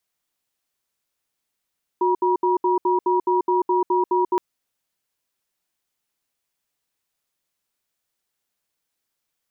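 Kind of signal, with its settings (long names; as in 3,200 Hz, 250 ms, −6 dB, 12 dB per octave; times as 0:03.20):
tone pair in a cadence 364 Hz, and 959 Hz, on 0.14 s, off 0.07 s, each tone −19 dBFS 2.37 s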